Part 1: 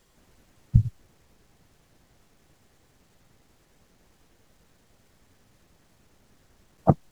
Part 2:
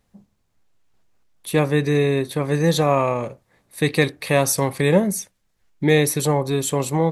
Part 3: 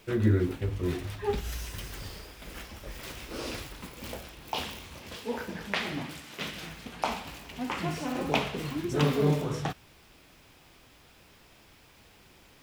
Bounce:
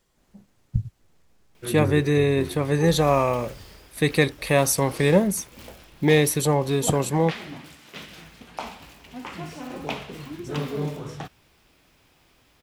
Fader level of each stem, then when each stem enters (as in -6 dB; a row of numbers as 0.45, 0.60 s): -6.0, -1.5, -3.5 dB; 0.00, 0.20, 1.55 s